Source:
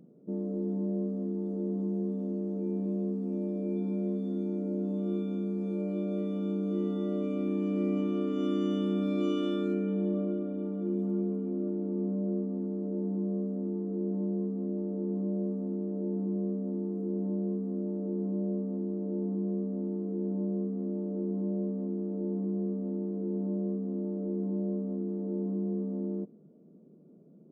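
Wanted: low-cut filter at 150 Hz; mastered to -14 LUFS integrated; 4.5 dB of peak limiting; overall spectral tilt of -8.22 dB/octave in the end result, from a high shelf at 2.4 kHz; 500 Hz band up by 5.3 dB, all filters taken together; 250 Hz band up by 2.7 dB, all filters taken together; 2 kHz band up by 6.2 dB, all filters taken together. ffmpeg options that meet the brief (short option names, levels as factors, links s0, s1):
-af "highpass=150,equalizer=f=250:t=o:g=3.5,equalizer=f=500:t=o:g=5.5,equalizer=f=2000:t=o:g=4.5,highshelf=f=2400:g=5.5,volume=5.96,alimiter=limit=0.596:level=0:latency=1"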